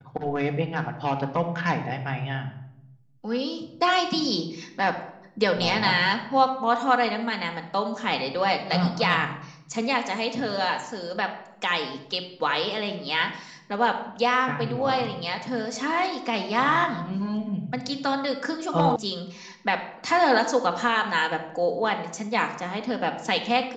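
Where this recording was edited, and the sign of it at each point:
0:18.96: cut off before it has died away

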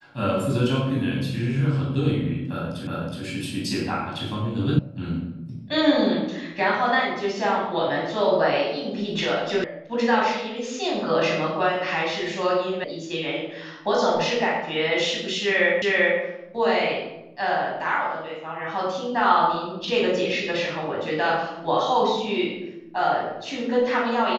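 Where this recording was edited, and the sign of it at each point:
0:02.87: the same again, the last 0.37 s
0:04.79: cut off before it has died away
0:09.64: cut off before it has died away
0:12.84: cut off before it has died away
0:15.82: the same again, the last 0.39 s

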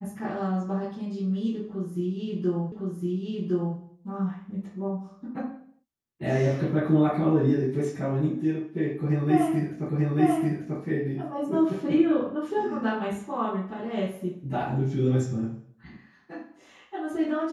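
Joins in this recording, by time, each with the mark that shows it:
0:02.72: the same again, the last 1.06 s
0:09.89: the same again, the last 0.89 s

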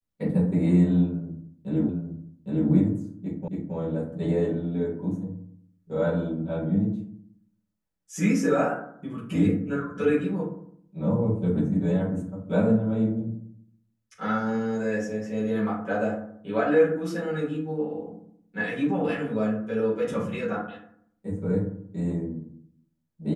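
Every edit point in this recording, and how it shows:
0:01.89: the same again, the last 0.81 s
0:03.48: the same again, the last 0.27 s

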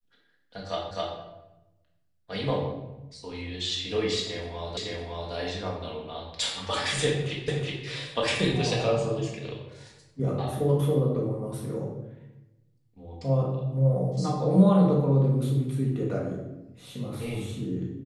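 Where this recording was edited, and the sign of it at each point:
0:00.91: the same again, the last 0.26 s
0:04.77: the same again, the last 0.56 s
0:07.48: the same again, the last 0.37 s

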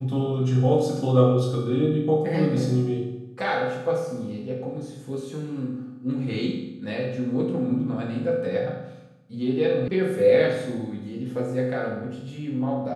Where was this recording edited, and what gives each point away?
0:09.88: cut off before it has died away

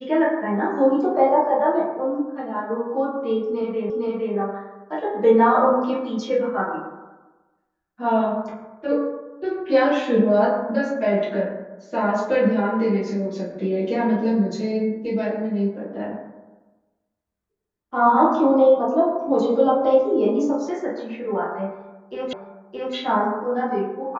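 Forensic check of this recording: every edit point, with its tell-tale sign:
0:03.90: the same again, the last 0.46 s
0:22.33: the same again, the last 0.62 s

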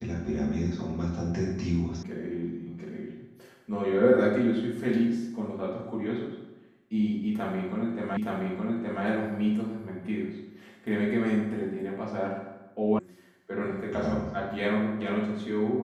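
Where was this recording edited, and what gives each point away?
0:02.03: cut off before it has died away
0:08.17: the same again, the last 0.87 s
0:12.99: cut off before it has died away

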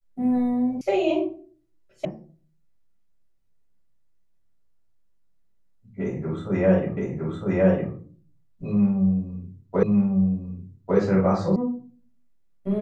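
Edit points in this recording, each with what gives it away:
0:00.81: cut off before it has died away
0:02.05: cut off before it has died away
0:06.97: the same again, the last 0.96 s
0:09.83: the same again, the last 1.15 s
0:11.56: cut off before it has died away

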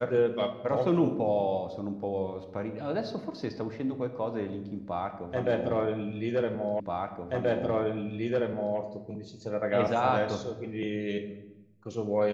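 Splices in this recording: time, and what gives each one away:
0:06.80: the same again, the last 1.98 s

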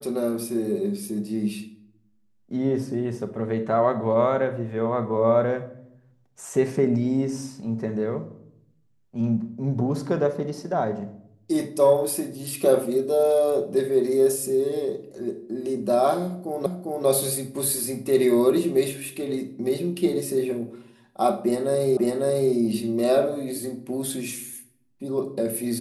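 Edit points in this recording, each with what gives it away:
0:16.66: the same again, the last 0.4 s
0:21.97: the same again, the last 0.55 s

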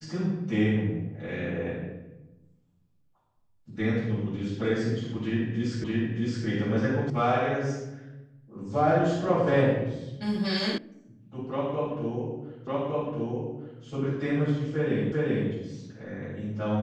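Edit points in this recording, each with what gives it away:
0:05.84: the same again, the last 0.62 s
0:07.10: cut off before it has died away
0:10.78: cut off before it has died away
0:12.67: the same again, the last 1.16 s
0:15.12: the same again, the last 0.39 s

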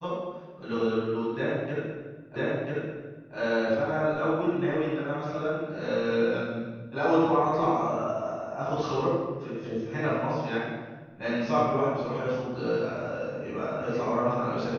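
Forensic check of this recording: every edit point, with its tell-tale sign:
0:02.36: the same again, the last 0.99 s

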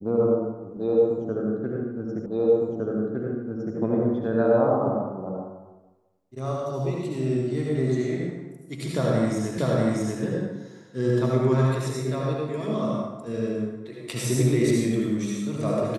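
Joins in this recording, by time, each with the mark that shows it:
0:02.26: the same again, the last 1.51 s
0:09.58: the same again, the last 0.64 s

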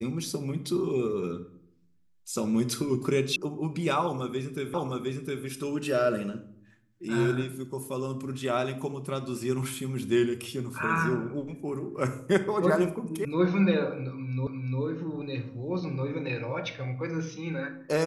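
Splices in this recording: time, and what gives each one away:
0:03.36: cut off before it has died away
0:04.74: the same again, the last 0.71 s
0:13.25: cut off before it has died away
0:14.47: the same again, the last 0.35 s

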